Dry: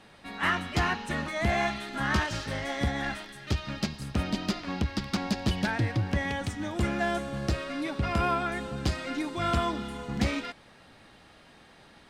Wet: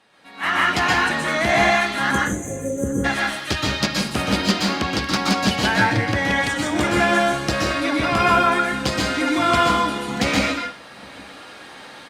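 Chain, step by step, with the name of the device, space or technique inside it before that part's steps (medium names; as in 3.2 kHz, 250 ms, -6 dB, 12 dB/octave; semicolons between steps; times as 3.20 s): spectral selection erased 2.11–3.05 s, 580–6000 Hz; bass shelf 280 Hz -10.5 dB; echo from a far wall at 140 m, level -24 dB; far-field microphone of a smart speaker (reverberation RT60 0.40 s, pre-delay 118 ms, DRR -1 dB; high-pass 96 Hz 6 dB/octave; level rider gain up to 16 dB; trim -3 dB; Opus 48 kbps 48 kHz)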